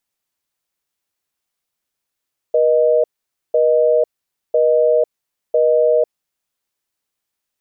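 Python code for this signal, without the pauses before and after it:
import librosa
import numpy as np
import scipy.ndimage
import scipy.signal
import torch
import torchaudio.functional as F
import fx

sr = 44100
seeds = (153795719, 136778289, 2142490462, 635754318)

y = fx.call_progress(sr, length_s=4.0, kind='busy tone', level_db=-13.5)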